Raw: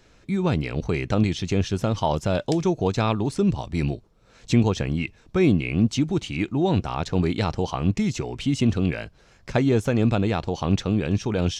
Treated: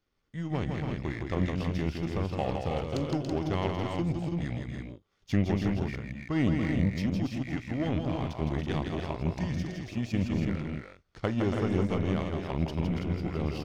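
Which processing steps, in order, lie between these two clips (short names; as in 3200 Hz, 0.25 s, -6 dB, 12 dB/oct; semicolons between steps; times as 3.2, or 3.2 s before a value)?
power-law curve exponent 1.4; varispeed -15%; tapped delay 42/162/282/328 ms -18.5/-5/-6.5/-6 dB; gain -6 dB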